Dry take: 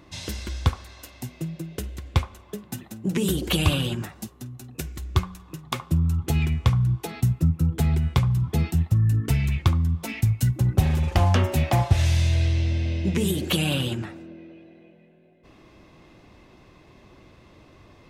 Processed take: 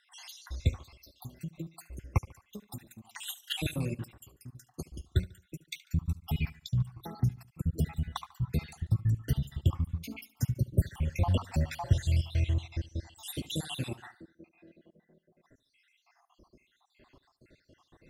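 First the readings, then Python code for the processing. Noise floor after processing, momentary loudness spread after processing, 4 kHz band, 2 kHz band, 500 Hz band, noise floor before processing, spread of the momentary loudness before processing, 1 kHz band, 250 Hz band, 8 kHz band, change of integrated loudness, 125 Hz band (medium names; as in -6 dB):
-75 dBFS, 18 LU, -10.0 dB, -11.5 dB, -12.0 dB, -53 dBFS, 16 LU, -12.0 dB, -11.0 dB, -10.0 dB, -9.5 dB, -9.5 dB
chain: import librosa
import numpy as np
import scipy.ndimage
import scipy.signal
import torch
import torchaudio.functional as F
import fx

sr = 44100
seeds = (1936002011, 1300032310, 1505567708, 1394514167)

p1 = fx.spec_dropout(x, sr, seeds[0], share_pct=69)
p2 = p1 + fx.echo_feedback(p1, sr, ms=72, feedback_pct=42, wet_db=-19.5, dry=0)
y = F.gain(torch.from_numpy(p2), -5.5).numpy()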